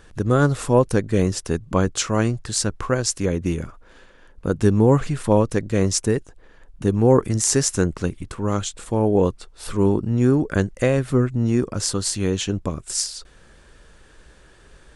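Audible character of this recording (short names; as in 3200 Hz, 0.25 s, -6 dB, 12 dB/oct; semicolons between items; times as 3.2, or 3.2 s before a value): noise floor -50 dBFS; spectral tilt -5.5 dB/oct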